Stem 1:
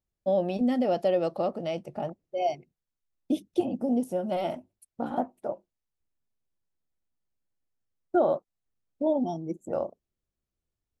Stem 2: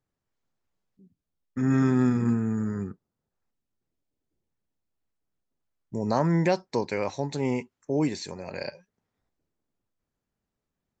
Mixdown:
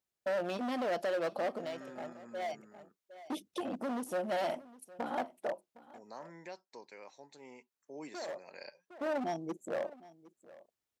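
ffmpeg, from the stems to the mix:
ffmpeg -i stem1.wav -i stem2.wav -filter_complex "[0:a]alimiter=limit=-21dB:level=0:latency=1:release=131,asoftclip=type=hard:threshold=-28.5dB,volume=2.5dB,asplit=2[link_01][link_02];[link_02]volume=-20dB[link_03];[1:a]highpass=180,volume=-11.5dB,afade=type=in:start_time=7.65:duration=0.6:silence=0.421697,asplit=2[link_04][link_05];[link_05]apad=whole_len=485140[link_06];[link_01][link_06]sidechaincompress=threshold=-47dB:ratio=8:attack=33:release=780[link_07];[link_03]aecho=0:1:761:1[link_08];[link_07][link_04][link_08]amix=inputs=3:normalize=0,highpass=frequency=650:poles=1" out.wav

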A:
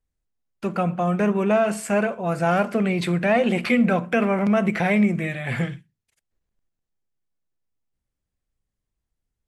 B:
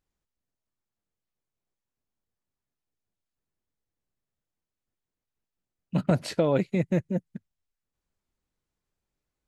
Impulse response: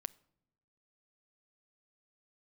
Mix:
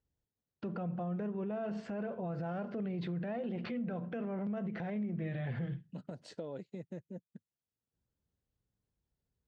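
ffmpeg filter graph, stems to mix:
-filter_complex "[0:a]lowpass=frequency=5000:width=0.5412,lowpass=frequency=5000:width=1.3066,aemphasis=mode=reproduction:type=bsi,alimiter=limit=-17dB:level=0:latency=1:release=437,volume=-5.5dB[link_01];[1:a]acompressor=threshold=-36dB:ratio=2.5,volume=-9.5dB,asplit=2[link_02][link_03];[link_03]apad=whole_len=417863[link_04];[link_01][link_04]sidechaincompress=threshold=-56dB:ratio=8:attack=16:release=668[link_05];[link_05][link_02]amix=inputs=2:normalize=0,highpass=110,equalizer=frequency=460:width_type=q:width=4:gain=4,equalizer=frequency=1200:width_type=q:width=4:gain=-4,equalizer=frequency=2300:width_type=q:width=4:gain=-9,lowpass=frequency=8100:width=0.5412,lowpass=frequency=8100:width=1.3066,alimiter=level_in=7dB:limit=-24dB:level=0:latency=1:release=80,volume=-7dB"

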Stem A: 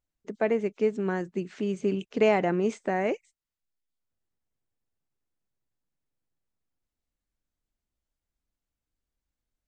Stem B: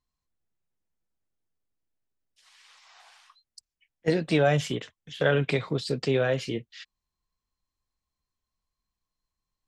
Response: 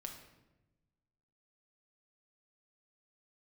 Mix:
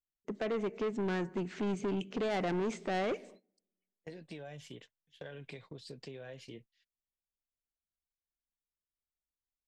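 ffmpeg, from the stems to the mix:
-filter_complex "[0:a]highshelf=frequency=2600:gain=-8,alimiter=limit=-20.5dB:level=0:latency=1:release=136,volume=0dB,asplit=2[link_01][link_02];[link_02]volume=-12dB[link_03];[1:a]bandreject=frequency=1300:width=5.6,acompressor=threshold=-28dB:ratio=12,volume=-14.5dB[link_04];[2:a]atrim=start_sample=2205[link_05];[link_03][link_05]afir=irnorm=-1:irlink=0[link_06];[link_01][link_04][link_06]amix=inputs=3:normalize=0,agate=range=-18dB:threshold=-54dB:ratio=16:detection=peak,asoftclip=type=tanh:threshold=-29.5dB,adynamicequalizer=threshold=0.00316:dfrequency=1700:dqfactor=0.7:tfrequency=1700:tqfactor=0.7:attack=5:release=100:ratio=0.375:range=2.5:mode=boostabove:tftype=highshelf"

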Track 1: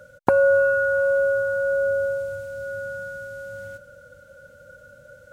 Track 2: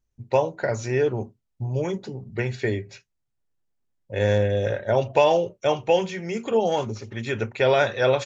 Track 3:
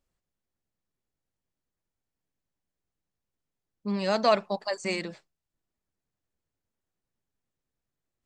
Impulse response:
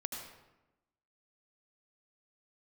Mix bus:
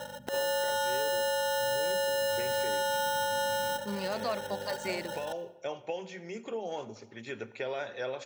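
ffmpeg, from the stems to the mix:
-filter_complex "[0:a]acompressor=threshold=-27dB:ratio=10,acrusher=samples=19:mix=1:aa=0.000001,aeval=exprs='val(0)+0.00355*(sin(2*PI*50*n/s)+sin(2*PI*2*50*n/s)/2+sin(2*PI*3*50*n/s)/3+sin(2*PI*4*50*n/s)/4+sin(2*PI*5*50*n/s)/5)':channel_layout=same,volume=-2.5dB,asplit=2[link_01][link_02];[link_02]volume=-11.5dB[link_03];[1:a]acompressor=threshold=-21dB:ratio=6,volume=-19.5dB,asplit=2[link_04][link_05];[link_05]volume=-12.5dB[link_06];[2:a]alimiter=limit=-18.5dB:level=0:latency=1:release=140,volume=-11.5dB,asplit=2[link_07][link_08];[link_08]apad=whole_len=363851[link_09];[link_04][link_09]sidechaincompress=threshold=-41dB:ratio=8:attack=16:release=1130[link_10];[3:a]atrim=start_sample=2205[link_11];[link_03][link_06]amix=inputs=2:normalize=0[link_12];[link_12][link_11]afir=irnorm=-1:irlink=0[link_13];[link_01][link_10][link_07][link_13]amix=inputs=4:normalize=0,highpass=200,acontrast=90,alimiter=limit=-21.5dB:level=0:latency=1:release=194"

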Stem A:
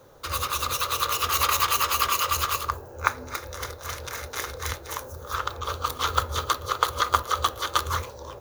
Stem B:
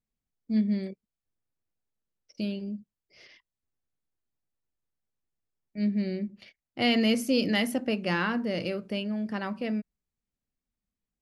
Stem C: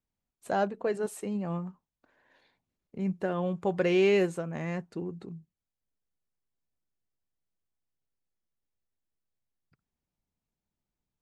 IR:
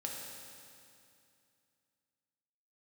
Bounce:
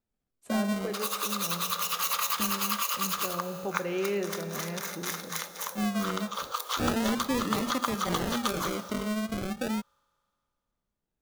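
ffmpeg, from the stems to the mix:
-filter_complex "[0:a]highpass=frequency=480:width=0.5412,highpass=frequency=480:width=1.3066,highshelf=frequency=3900:gain=5.5,adelay=700,volume=-5.5dB,asplit=2[link_01][link_02];[link_02]volume=-9.5dB[link_03];[1:a]acrusher=samples=40:mix=1:aa=0.000001:lfo=1:lforange=24:lforate=0.36,volume=1.5dB[link_04];[2:a]volume=-7dB,asplit=2[link_05][link_06];[link_06]volume=-4.5dB[link_07];[3:a]atrim=start_sample=2205[link_08];[link_03][link_07]amix=inputs=2:normalize=0[link_09];[link_09][link_08]afir=irnorm=-1:irlink=0[link_10];[link_01][link_04][link_05][link_10]amix=inputs=4:normalize=0,acompressor=threshold=-29dB:ratio=2"

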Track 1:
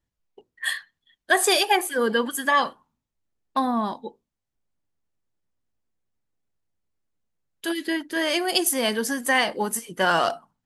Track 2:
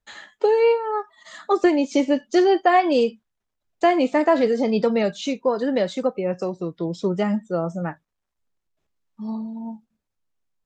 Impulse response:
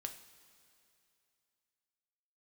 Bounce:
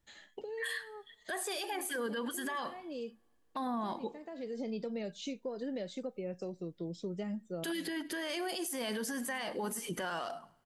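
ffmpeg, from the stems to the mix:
-filter_complex "[0:a]acompressor=threshold=-29dB:ratio=6,alimiter=level_in=6dB:limit=-24dB:level=0:latency=1:release=111,volume=-6dB,volume=2.5dB,asplit=4[link_01][link_02][link_03][link_04];[link_02]volume=-16.5dB[link_05];[link_03]volume=-19.5dB[link_06];[1:a]equalizer=frequency=1100:width=1.3:gain=-11,acompressor=threshold=-23dB:ratio=6,volume=-12dB,asplit=2[link_07][link_08];[link_08]volume=-23.5dB[link_09];[link_04]apad=whole_len=469884[link_10];[link_07][link_10]sidechaincompress=threshold=-49dB:ratio=8:attack=21:release=417[link_11];[2:a]atrim=start_sample=2205[link_12];[link_05][link_09]amix=inputs=2:normalize=0[link_13];[link_13][link_12]afir=irnorm=-1:irlink=0[link_14];[link_06]aecho=0:1:103|206|309|412:1|0.27|0.0729|0.0197[link_15];[link_01][link_11][link_14][link_15]amix=inputs=4:normalize=0,alimiter=level_in=5dB:limit=-24dB:level=0:latency=1:release=16,volume=-5dB"

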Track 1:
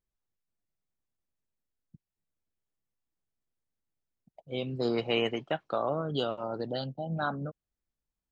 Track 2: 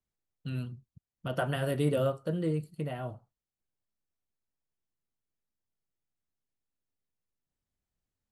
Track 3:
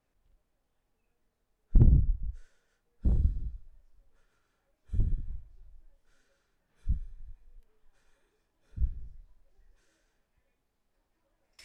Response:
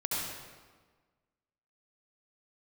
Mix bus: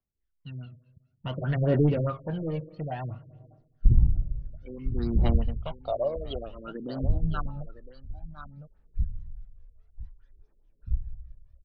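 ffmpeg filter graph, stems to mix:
-filter_complex "[0:a]bandreject=frequency=790:width=15,bandreject=frequency=433.1:width_type=h:width=4,bandreject=frequency=866.2:width_type=h:width=4,bandreject=frequency=1299.3:width_type=h:width=4,bandreject=frequency=1732.4:width_type=h:width=4,bandreject=frequency=2165.5:width_type=h:width=4,bandreject=frequency=2598.6:width_type=h:width=4,bandreject=frequency=3031.7:width_type=h:width=4,bandreject=frequency=3464.8:width_type=h:width=4,bandreject=frequency=3897.9:width_type=h:width=4,bandreject=frequency=4331:width_type=h:width=4,bandreject=frequency=4764.1:width_type=h:width=4,bandreject=frequency=5197.2:width_type=h:width=4,bandreject=frequency=5630.3:width_type=h:width=4,bandreject=frequency=6063.4:width_type=h:width=4,bandreject=frequency=6496.5:width_type=h:width=4,bandreject=frequency=6929.6:width_type=h:width=4,bandreject=frequency=7362.7:width_type=h:width=4,bandreject=frequency=7795.8:width_type=h:width=4,bandreject=frequency=8228.9:width_type=h:width=4,bandreject=frequency=8662:width_type=h:width=4,bandreject=frequency=9095.1:width_type=h:width=4,bandreject=frequency=9528.2:width_type=h:width=4,bandreject=frequency=9961.3:width_type=h:width=4,bandreject=frequency=10394.4:width_type=h:width=4,bandreject=frequency=10827.5:width_type=h:width=4,bandreject=frequency=11260.6:width_type=h:width=4,bandreject=frequency=11693.7:width_type=h:width=4,bandreject=frequency=12126.8:width_type=h:width=4,bandreject=frequency=12559.9:width_type=h:width=4,bandreject=frequency=12993:width_type=h:width=4,bandreject=frequency=13426.1:width_type=h:width=4,bandreject=frequency=13859.2:width_type=h:width=4,bandreject=frequency=14292.3:width_type=h:width=4,bandreject=frequency=14725.4:width_type=h:width=4,bandreject=frequency=15158.5:width_type=h:width=4,asplit=2[link_01][link_02];[link_02]afreqshift=-0.48[link_03];[link_01][link_03]amix=inputs=2:normalize=1,adelay=150,volume=-1dB,asplit=2[link_04][link_05];[link_05]volume=-13dB[link_06];[1:a]dynaudnorm=framelen=140:gausssize=13:maxgain=10dB,asoftclip=type=tanh:threshold=-14dB,volume=-8dB,asplit=2[link_07][link_08];[link_08]volume=-22.5dB[link_09];[2:a]adelay=2100,volume=-7dB,asplit=3[link_10][link_11][link_12];[link_11]volume=-13.5dB[link_13];[link_12]volume=-10.5dB[link_14];[3:a]atrim=start_sample=2205[link_15];[link_09][link_13]amix=inputs=2:normalize=0[link_16];[link_16][link_15]afir=irnorm=-1:irlink=0[link_17];[link_06][link_14]amix=inputs=2:normalize=0,aecho=0:1:1007:1[link_18];[link_04][link_07][link_10][link_17][link_18]amix=inputs=5:normalize=0,aphaser=in_gain=1:out_gain=1:delay=1.9:decay=0.64:speed=0.57:type=triangular,afftfilt=real='re*lt(b*sr/1024,510*pow(6500/510,0.5+0.5*sin(2*PI*4.8*pts/sr)))':imag='im*lt(b*sr/1024,510*pow(6500/510,0.5+0.5*sin(2*PI*4.8*pts/sr)))':win_size=1024:overlap=0.75"

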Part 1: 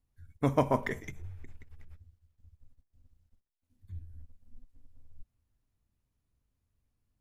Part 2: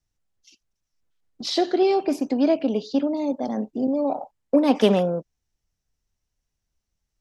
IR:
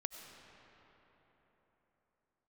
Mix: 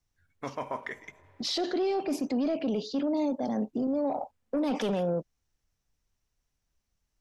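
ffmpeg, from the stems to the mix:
-filter_complex "[0:a]bandpass=frequency=1700:width_type=q:width=0.53:csg=0,volume=0dB,asplit=2[link_01][link_02];[link_02]volume=-18dB[link_03];[1:a]asoftclip=type=tanh:threshold=-11dB,volume=-0.5dB[link_04];[2:a]atrim=start_sample=2205[link_05];[link_03][link_05]afir=irnorm=-1:irlink=0[link_06];[link_01][link_04][link_06]amix=inputs=3:normalize=0,alimiter=limit=-22.5dB:level=0:latency=1:release=11"

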